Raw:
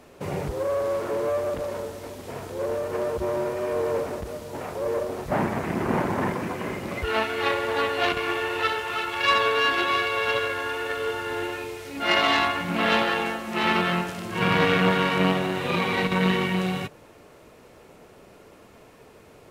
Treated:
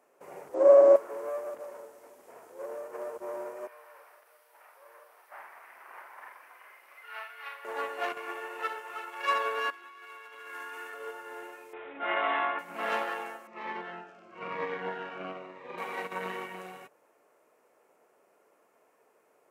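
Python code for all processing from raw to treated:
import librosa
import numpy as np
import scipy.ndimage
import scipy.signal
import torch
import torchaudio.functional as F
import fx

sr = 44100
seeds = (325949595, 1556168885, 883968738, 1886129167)

y = fx.chain(x, sr, fx.steep_lowpass(hz=8000.0, slope=36),
    fx.small_body(hz=(300.0, 600.0), ring_ms=30, db=17), at=(0.54, 0.96))
y = fx.chain(y, sr, fx.highpass(hz=1400.0, slope=12),
    fx.peak_eq(hz=7100.0, db=-13.0, octaves=0.59),
    fx.doubler(ms=47.0, db=-6.0), at=(3.67, 7.65))
y = fx.chain(y, sr, fx.highpass(hz=210.0, slope=24),
    fx.peak_eq(hz=570.0, db=-14.0, octaves=0.69),
    fx.over_compress(threshold_db=-32.0, ratio=-1.0), at=(9.7, 10.94))
y = fx.chain(y, sr, fx.peak_eq(hz=3000.0, db=-6.5, octaves=0.23),
    fx.resample_bad(factor=6, down='none', up='filtered'),
    fx.env_flatten(amount_pct=50), at=(11.73, 12.59))
y = fx.chain(y, sr, fx.air_absorb(metres=180.0),
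    fx.notch_cascade(direction='falling', hz=1.0), at=(13.47, 15.78))
y = scipy.signal.sosfilt(scipy.signal.butter(2, 510.0, 'highpass', fs=sr, output='sos'), y)
y = fx.peak_eq(y, sr, hz=3800.0, db=-13.5, octaves=1.2)
y = fx.upward_expand(y, sr, threshold_db=-37.0, expansion=1.5)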